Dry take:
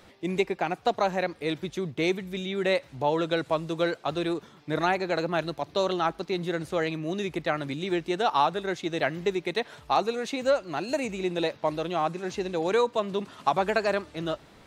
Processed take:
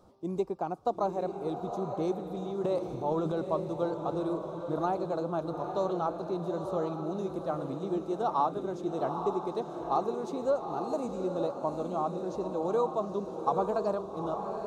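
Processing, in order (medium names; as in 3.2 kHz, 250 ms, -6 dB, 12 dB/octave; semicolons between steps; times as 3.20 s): 2.64–3.41 s: transient shaper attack -4 dB, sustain +10 dB; FFT filter 1.2 kHz 0 dB, 1.9 kHz -26 dB, 5.4 kHz -8 dB; echo that smears into a reverb 854 ms, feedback 47%, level -6 dB; trim -4.5 dB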